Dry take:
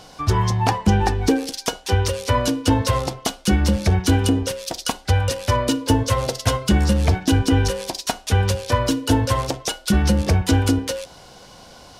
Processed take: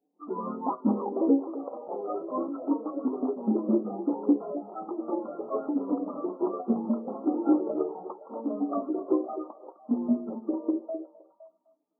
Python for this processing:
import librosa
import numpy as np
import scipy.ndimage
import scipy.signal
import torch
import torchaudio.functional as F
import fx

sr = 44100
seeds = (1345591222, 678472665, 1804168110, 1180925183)

p1 = fx.pitch_glide(x, sr, semitones=3.5, runs='starting unshifted')
p2 = fx.env_lowpass(p1, sr, base_hz=350.0, full_db=-14.0)
p3 = (np.mod(10.0 ** (10.5 / 20.0) * p2 + 1.0, 2.0) - 1.0) / 10.0 ** (10.5 / 20.0)
p4 = p2 + (p3 * librosa.db_to_amplitude(-5.5))
p5 = fx.env_flanger(p4, sr, rest_ms=7.3, full_db=-12.0)
p6 = fx.tremolo_shape(p5, sr, shape='triangle', hz=4.7, depth_pct=40)
p7 = fx.echo_pitch(p6, sr, ms=125, semitones=3, count=2, db_per_echo=-3.0)
p8 = fx.brickwall_bandpass(p7, sr, low_hz=190.0, high_hz=1400.0)
p9 = p8 + fx.echo_stepped(p8, sr, ms=256, hz=390.0, octaves=0.7, feedback_pct=70, wet_db=-7.5, dry=0)
p10 = fx.spectral_expand(p9, sr, expansion=1.5)
y = p10 * librosa.db_to_amplitude(-6.0)